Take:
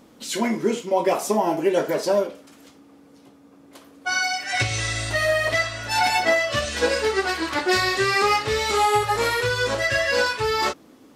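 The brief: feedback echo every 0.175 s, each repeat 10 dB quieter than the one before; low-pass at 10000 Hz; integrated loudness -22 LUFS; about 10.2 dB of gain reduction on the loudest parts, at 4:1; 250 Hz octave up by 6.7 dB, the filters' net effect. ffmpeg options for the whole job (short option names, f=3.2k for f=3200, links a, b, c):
-af "lowpass=10k,equalizer=f=250:t=o:g=9,acompressor=threshold=-25dB:ratio=4,aecho=1:1:175|350|525|700:0.316|0.101|0.0324|0.0104,volume=5dB"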